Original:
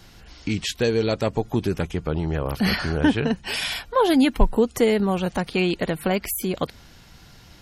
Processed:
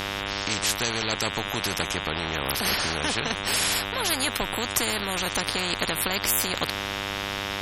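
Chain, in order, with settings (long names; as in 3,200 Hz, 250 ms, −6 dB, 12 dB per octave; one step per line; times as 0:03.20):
harmonic generator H 8 −45 dB, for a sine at −3.5 dBFS
hum with harmonics 100 Hz, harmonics 38, −39 dBFS −3 dB per octave
every bin compressed towards the loudest bin 4 to 1
level −2.5 dB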